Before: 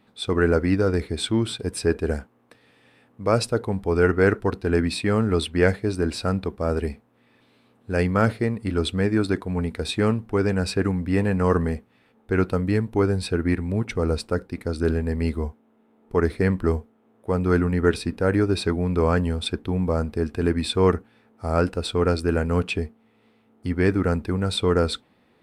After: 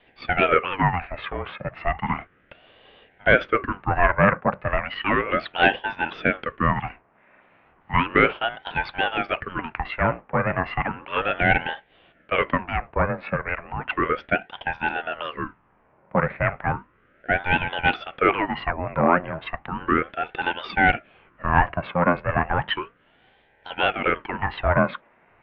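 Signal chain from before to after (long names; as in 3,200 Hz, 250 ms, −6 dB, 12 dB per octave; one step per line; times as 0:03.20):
sine wavefolder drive 4 dB, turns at −4.5 dBFS
single-sideband voice off tune −88 Hz 530–2,400 Hz
ring modulator whose carrier an LFO sweeps 690 Hz, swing 75%, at 0.34 Hz
level +3.5 dB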